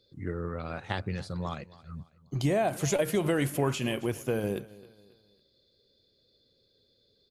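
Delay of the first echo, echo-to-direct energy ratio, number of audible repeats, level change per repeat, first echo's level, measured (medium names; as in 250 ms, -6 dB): 272 ms, -19.5 dB, 2, -8.0 dB, -20.0 dB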